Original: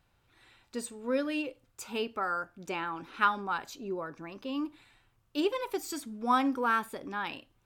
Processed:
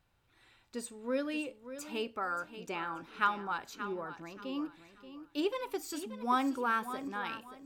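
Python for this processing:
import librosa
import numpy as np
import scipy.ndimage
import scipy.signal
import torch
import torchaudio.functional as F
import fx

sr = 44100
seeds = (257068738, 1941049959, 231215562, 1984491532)

y = fx.echo_feedback(x, sr, ms=580, feedback_pct=27, wet_db=-12.0)
y = y * librosa.db_to_amplitude(-3.5)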